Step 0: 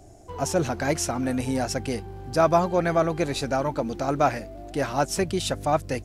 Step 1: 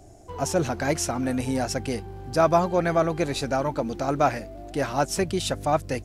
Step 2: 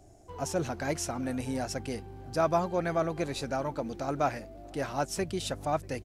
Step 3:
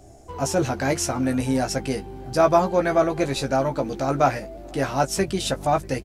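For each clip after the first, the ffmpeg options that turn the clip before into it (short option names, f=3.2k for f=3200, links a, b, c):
-af anull
-filter_complex "[0:a]asplit=2[a][b];[b]adelay=641.4,volume=-24dB,highshelf=f=4k:g=-14.4[c];[a][c]amix=inputs=2:normalize=0,volume=-7dB"
-filter_complex "[0:a]asplit=2[a][b];[b]adelay=15,volume=-6dB[c];[a][c]amix=inputs=2:normalize=0,volume=8dB"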